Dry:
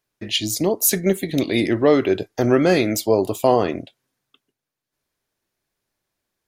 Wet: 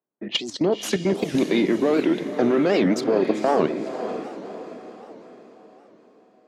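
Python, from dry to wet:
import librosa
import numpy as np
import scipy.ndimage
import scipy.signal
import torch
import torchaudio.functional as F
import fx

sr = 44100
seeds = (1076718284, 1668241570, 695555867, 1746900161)

p1 = fx.diode_clip(x, sr, knee_db=-12.0)
p2 = scipy.signal.sosfilt(scipy.signal.butter(6, 160.0, 'highpass', fs=sr, output='sos'), p1)
p3 = fx.env_lowpass(p2, sr, base_hz=920.0, full_db=-19.5)
p4 = scipy.signal.sosfilt(scipy.signal.butter(2, 5300.0, 'lowpass', fs=sr, output='sos'), p3)
p5 = fx.high_shelf(p4, sr, hz=2200.0, db=-5.0)
p6 = fx.level_steps(p5, sr, step_db=12)
p7 = p6 + fx.echo_diffused(p6, sr, ms=509, feedback_pct=48, wet_db=-9.0, dry=0)
p8 = fx.record_warp(p7, sr, rpm=78.0, depth_cents=250.0)
y = F.gain(torch.from_numpy(p8), 5.0).numpy()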